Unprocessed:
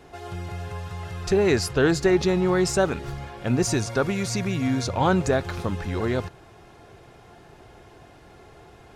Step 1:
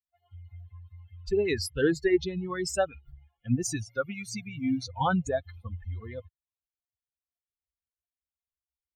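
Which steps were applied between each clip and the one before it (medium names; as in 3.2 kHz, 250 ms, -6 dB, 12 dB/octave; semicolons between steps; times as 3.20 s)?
expander on every frequency bin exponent 3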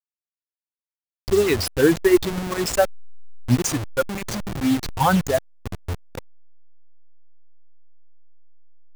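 send-on-delta sampling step -30 dBFS; trim +8.5 dB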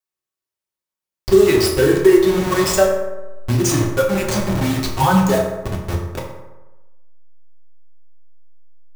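compression 3:1, threshold -21 dBFS, peak gain reduction 9 dB; reverberation RT60 1.1 s, pre-delay 3 ms, DRR -2.5 dB; trim +4 dB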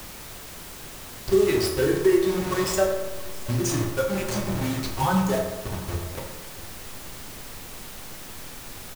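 delay 679 ms -21 dB; word length cut 6-bit, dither triangular; added noise pink -34 dBFS; trim -8 dB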